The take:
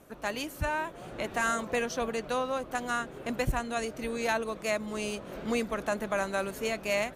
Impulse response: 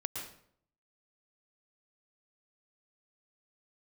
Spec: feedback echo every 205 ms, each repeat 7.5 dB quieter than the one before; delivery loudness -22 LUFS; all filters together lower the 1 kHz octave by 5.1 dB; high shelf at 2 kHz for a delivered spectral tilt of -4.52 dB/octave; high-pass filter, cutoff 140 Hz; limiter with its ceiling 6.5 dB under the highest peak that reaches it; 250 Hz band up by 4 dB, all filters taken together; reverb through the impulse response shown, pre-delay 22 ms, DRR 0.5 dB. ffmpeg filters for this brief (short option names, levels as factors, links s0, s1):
-filter_complex "[0:a]highpass=140,equalizer=f=250:t=o:g=5.5,equalizer=f=1000:t=o:g=-6,highshelf=f=2000:g=-6,alimiter=level_in=1.06:limit=0.0631:level=0:latency=1,volume=0.944,aecho=1:1:205|410|615|820|1025:0.422|0.177|0.0744|0.0312|0.0131,asplit=2[s0][s1];[1:a]atrim=start_sample=2205,adelay=22[s2];[s1][s2]afir=irnorm=-1:irlink=0,volume=0.794[s3];[s0][s3]amix=inputs=2:normalize=0,volume=2.82"